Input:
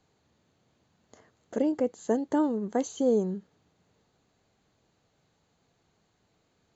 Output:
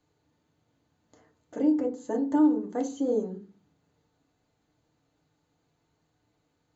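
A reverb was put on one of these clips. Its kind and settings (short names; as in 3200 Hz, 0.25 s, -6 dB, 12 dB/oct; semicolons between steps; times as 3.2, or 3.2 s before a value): FDN reverb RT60 0.35 s, low-frequency decay 1.5×, high-frequency decay 0.45×, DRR 1 dB; gain -6.5 dB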